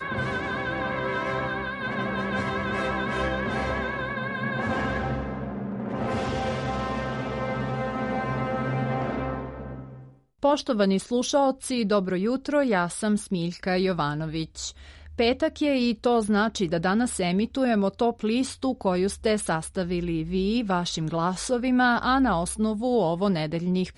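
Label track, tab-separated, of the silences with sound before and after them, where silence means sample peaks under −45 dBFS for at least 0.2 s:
10.130000	10.430000	silence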